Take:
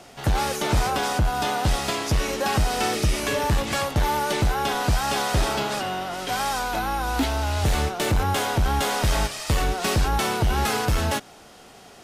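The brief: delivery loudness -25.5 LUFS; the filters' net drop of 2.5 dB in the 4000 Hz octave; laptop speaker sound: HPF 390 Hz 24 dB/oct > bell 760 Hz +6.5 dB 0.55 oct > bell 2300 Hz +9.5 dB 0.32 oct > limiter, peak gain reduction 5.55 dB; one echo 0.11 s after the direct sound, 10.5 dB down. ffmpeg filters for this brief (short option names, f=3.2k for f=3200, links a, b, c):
-af "highpass=f=390:w=0.5412,highpass=f=390:w=1.3066,equalizer=f=760:t=o:w=0.55:g=6.5,equalizer=f=2.3k:t=o:w=0.32:g=9.5,equalizer=f=4k:t=o:g=-4.5,aecho=1:1:110:0.299,volume=-1.5dB,alimiter=limit=-16.5dB:level=0:latency=1"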